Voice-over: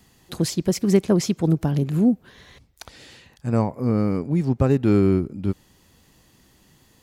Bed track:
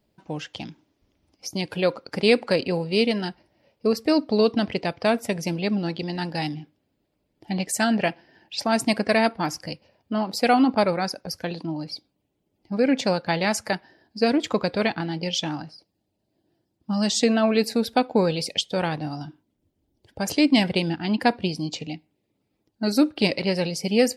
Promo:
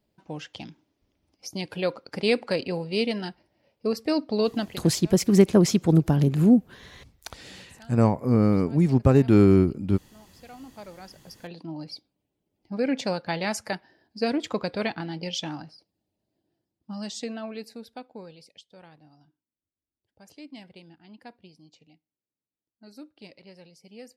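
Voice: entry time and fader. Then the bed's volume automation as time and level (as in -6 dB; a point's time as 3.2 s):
4.45 s, +1.0 dB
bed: 4.6 s -4.5 dB
5 s -28 dB
10.52 s -28 dB
11.8 s -5 dB
16.24 s -5 dB
18.61 s -25.5 dB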